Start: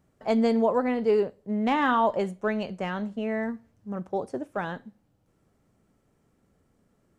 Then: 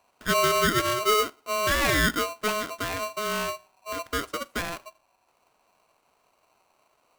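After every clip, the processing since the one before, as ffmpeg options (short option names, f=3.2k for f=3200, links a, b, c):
-af "aeval=exprs='val(0)*sgn(sin(2*PI*850*n/s))':c=same"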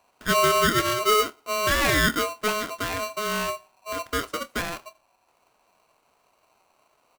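-filter_complex "[0:a]asplit=2[a][b];[b]adelay=26,volume=-13dB[c];[a][c]amix=inputs=2:normalize=0,volume=1.5dB"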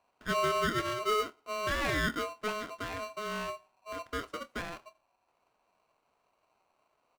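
-af "lowpass=f=3.5k:p=1,volume=-8.5dB"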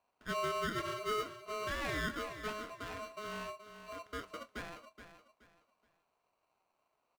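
-af "aecho=1:1:424|848|1272:0.282|0.0817|0.0237,volume=-6.5dB"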